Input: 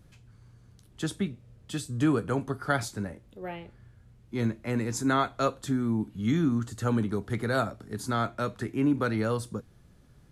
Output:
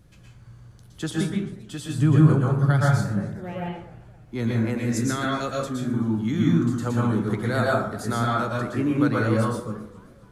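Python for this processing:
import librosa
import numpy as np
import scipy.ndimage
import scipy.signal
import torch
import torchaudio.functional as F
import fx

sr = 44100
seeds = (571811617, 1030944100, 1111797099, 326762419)

y = fx.peak_eq(x, sr, hz=140.0, db=14.5, octaves=0.88, at=(1.98, 3.53))
y = fx.rev_plate(y, sr, seeds[0], rt60_s=0.64, hf_ratio=0.5, predelay_ms=105, drr_db=-3.5)
y = fx.rider(y, sr, range_db=4, speed_s=2.0)
y = fx.peak_eq(y, sr, hz=870.0, db=-10.5, octaves=1.2, at=(4.78, 5.94))
y = fx.echo_warbled(y, sr, ms=265, feedback_pct=51, rate_hz=2.8, cents=189, wet_db=-21.0)
y = F.gain(torch.from_numpy(y), -2.0).numpy()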